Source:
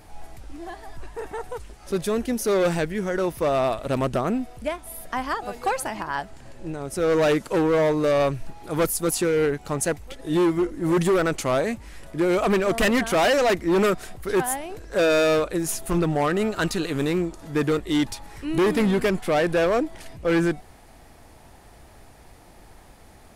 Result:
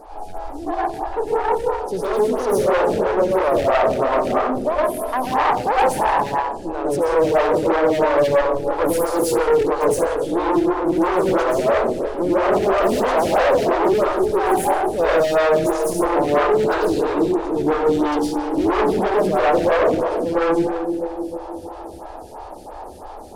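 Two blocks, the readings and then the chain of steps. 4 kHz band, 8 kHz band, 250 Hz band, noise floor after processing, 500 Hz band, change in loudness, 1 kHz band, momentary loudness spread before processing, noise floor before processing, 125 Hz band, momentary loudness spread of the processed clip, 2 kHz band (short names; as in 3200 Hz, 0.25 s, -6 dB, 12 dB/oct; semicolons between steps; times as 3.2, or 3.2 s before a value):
-1.0 dB, -2.0 dB, +2.5 dB, -35 dBFS, +6.0 dB, +4.5 dB, +9.5 dB, 14 LU, -49 dBFS, -3.0 dB, 11 LU, +2.0 dB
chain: in parallel at +1.5 dB: limiter -23 dBFS, peak gain reduction 6.5 dB; on the sum: LPF 11000 Hz 12 dB/oct; on a send: split-band echo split 490 Hz, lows 0.302 s, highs 89 ms, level -9.5 dB; on the sum: soft clip -18 dBFS, distortion -12 dB; ten-band EQ 125 Hz -12 dB, 500 Hz +6 dB, 1000 Hz +9 dB, 2000 Hz -10 dB, 8000 Hz -4 dB; plate-style reverb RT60 0.54 s, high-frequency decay 0.8×, pre-delay 95 ms, DRR -5 dB; one-sided clip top -18 dBFS, bottom -7.5 dBFS; photocell phaser 3 Hz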